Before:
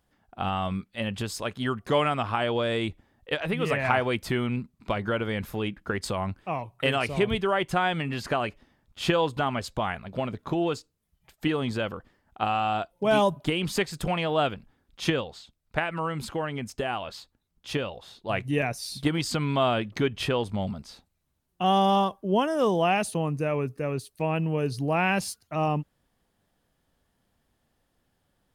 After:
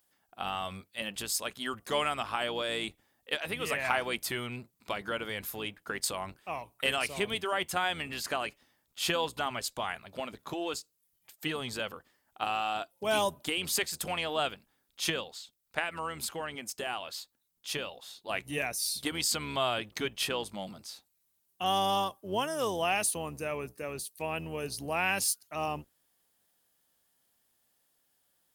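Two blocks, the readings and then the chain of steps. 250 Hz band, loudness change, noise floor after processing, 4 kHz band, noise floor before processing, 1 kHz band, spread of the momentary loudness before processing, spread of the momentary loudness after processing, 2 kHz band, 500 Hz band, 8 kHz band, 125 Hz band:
-12.0 dB, -5.0 dB, -76 dBFS, 0.0 dB, -74 dBFS, -6.0 dB, 9 LU, 11 LU, -3.0 dB, -8.0 dB, +6.5 dB, -14.5 dB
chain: octaver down 1 oct, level -4 dB; RIAA curve recording; gain -5.5 dB

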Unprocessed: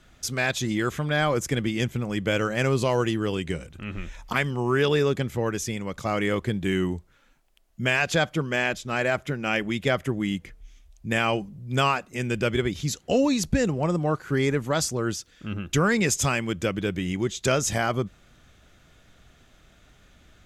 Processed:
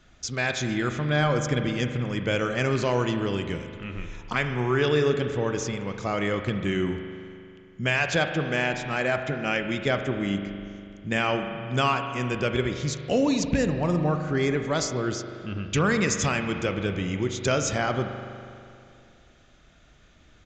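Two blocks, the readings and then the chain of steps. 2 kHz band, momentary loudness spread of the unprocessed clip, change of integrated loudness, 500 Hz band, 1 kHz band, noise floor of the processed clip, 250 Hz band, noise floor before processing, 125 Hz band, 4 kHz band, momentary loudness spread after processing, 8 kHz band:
-0.5 dB, 8 LU, -0.5 dB, -0.5 dB, -0.5 dB, -56 dBFS, -0.5 dB, -58 dBFS, 0.0 dB, -1.0 dB, 11 LU, -2.5 dB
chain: rattling part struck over -20 dBFS, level -21 dBFS; spring tank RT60 2.5 s, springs 40 ms, chirp 35 ms, DRR 6.5 dB; downsampling 16000 Hz; gain -1.5 dB

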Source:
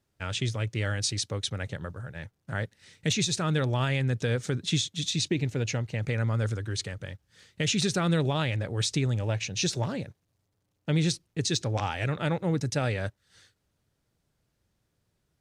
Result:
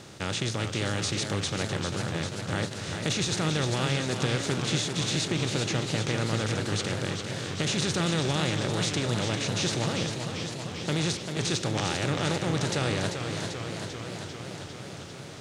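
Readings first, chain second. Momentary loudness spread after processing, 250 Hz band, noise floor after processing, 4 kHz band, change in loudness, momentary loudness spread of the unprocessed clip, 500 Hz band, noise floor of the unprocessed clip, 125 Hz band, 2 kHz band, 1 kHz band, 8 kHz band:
8 LU, +1.5 dB, -41 dBFS, +2.5 dB, 0.0 dB, 11 LU, +2.0 dB, -77 dBFS, -1.0 dB, +2.5 dB, +3.0 dB, +1.5 dB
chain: per-bin compression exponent 0.4; warbling echo 0.395 s, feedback 75%, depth 116 cents, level -7 dB; gain -6.5 dB

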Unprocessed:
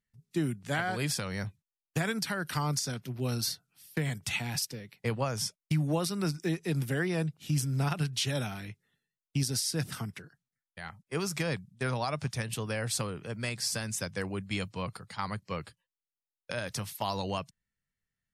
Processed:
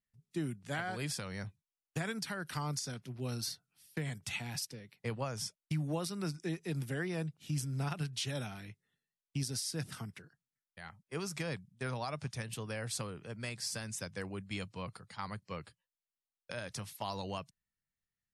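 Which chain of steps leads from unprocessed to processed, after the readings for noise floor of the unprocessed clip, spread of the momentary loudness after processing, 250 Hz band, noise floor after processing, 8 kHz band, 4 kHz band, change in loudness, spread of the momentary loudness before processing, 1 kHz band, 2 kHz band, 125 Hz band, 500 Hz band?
under -85 dBFS, 9 LU, -6.5 dB, under -85 dBFS, -6.5 dB, -6.5 dB, -6.5 dB, 9 LU, -6.5 dB, -6.5 dB, -6.5 dB, -6.5 dB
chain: steep low-pass 12000 Hz 96 dB/oct; gain -6.5 dB

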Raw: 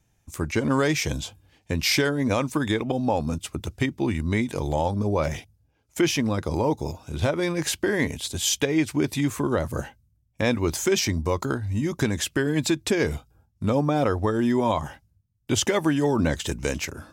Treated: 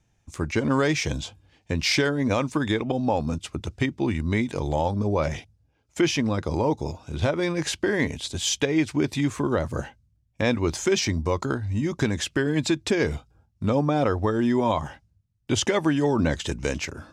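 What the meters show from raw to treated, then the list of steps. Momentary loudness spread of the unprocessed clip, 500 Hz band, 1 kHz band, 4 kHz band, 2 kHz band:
9 LU, 0.0 dB, 0.0 dB, -0.5 dB, 0.0 dB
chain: LPF 7000 Hz 12 dB/oct

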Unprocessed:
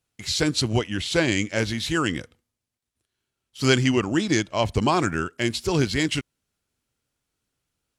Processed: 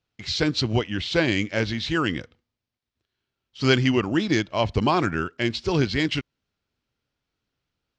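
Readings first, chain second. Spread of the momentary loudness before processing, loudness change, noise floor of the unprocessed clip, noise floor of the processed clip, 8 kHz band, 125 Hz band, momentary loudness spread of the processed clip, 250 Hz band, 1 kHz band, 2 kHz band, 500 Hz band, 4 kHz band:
5 LU, 0.0 dB, -84 dBFS, under -85 dBFS, -9.5 dB, 0.0 dB, 5 LU, 0.0 dB, 0.0 dB, 0.0 dB, 0.0 dB, -0.5 dB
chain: LPF 5200 Hz 24 dB/oct

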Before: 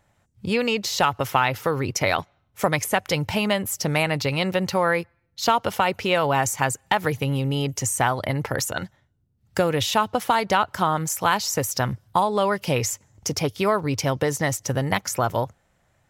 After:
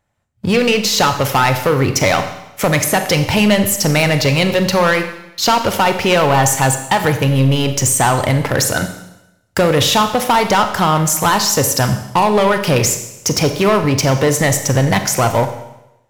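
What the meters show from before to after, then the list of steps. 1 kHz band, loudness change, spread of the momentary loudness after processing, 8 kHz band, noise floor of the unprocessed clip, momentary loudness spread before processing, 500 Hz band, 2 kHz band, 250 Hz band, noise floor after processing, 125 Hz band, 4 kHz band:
+7.0 dB, +9.0 dB, 5 LU, +11.0 dB, -67 dBFS, 5 LU, +8.5 dB, +8.0 dB, +10.0 dB, -53 dBFS, +10.5 dB, +10.0 dB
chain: sample leveller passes 3; Schroeder reverb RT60 0.9 s, combs from 30 ms, DRR 7.5 dB

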